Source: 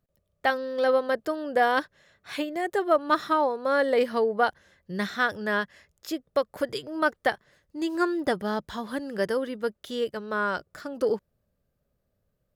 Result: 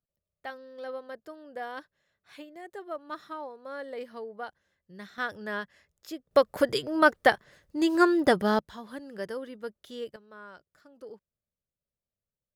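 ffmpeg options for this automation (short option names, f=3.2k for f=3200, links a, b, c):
-af "asetnsamples=n=441:p=0,asendcmd='5.18 volume volume -7.5dB;6.31 volume volume 4dB;8.59 volume volume -9dB;10.16 volume volume -20dB',volume=-15.5dB"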